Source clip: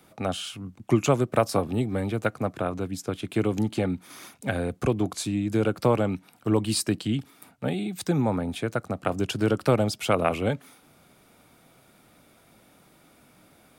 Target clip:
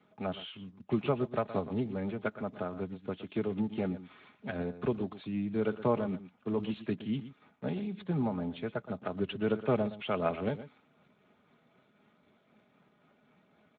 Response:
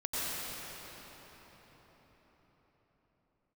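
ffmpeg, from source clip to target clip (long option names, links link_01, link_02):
-filter_complex "[0:a]asplit=3[link_01][link_02][link_03];[link_01]afade=type=out:start_time=2.75:duration=0.02[link_04];[link_02]adynamicequalizer=threshold=0.00141:dfrequency=950:dqfactor=4.5:tfrequency=950:tqfactor=4.5:attack=5:release=100:ratio=0.375:range=2.5:mode=boostabove:tftype=bell,afade=type=in:start_time=2.75:duration=0.02,afade=type=out:start_time=3.26:duration=0.02[link_05];[link_03]afade=type=in:start_time=3.26:duration=0.02[link_06];[link_04][link_05][link_06]amix=inputs=3:normalize=0,asplit=3[link_07][link_08][link_09];[link_07]afade=type=out:start_time=6.06:duration=0.02[link_10];[link_08]highpass=frequency=92:width=0.5412,highpass=frequency=92:width=1.3066,afade=type=in:start_time=6.06:duration=0.02,afade=type=out:start_time=6.96:duration=0.02[link_11];[link_09]afade=type=in:start_time=6.96:duration=0.02[link_12];[link_10][link_11][link_12]amix=inputs=3:normalize=0,aecho=1:1:4.8:0.44,asplit=3[link_13][link_14][link_15];[link_13]afade=type=out:start_time=1.3:duration=0.02[link_16];[link_14]asubboost=boost=2:cutoff=140,afade=type=in:start_time=1.3:duration=0.02,afade=type=out:start_time=1.78:duration=0.02[link_17];[link_15]afade=type=in:start_time=1.78:duration=0.02[link_18];[link_16][link_17][link_18]amix=inputs=3:normalize=0,tremolo=f=3.9:d=0.3,aecho=1:1:119:0.211,aresample=8000,aresample=44100,volume=-7.5dB" -ar 16000 -c:a libspeex -b:a 13k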